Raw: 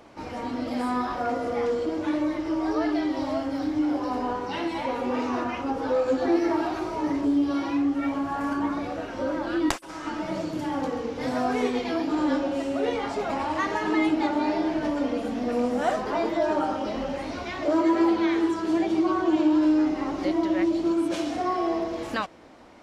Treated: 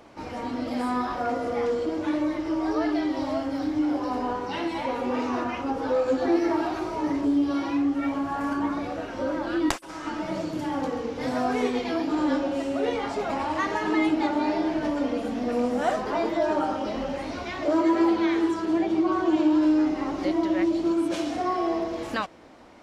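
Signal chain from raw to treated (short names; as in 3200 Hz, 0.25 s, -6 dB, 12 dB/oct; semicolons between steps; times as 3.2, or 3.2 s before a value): 18.65–19.12 high shelf 4300 Hz -7.5 dB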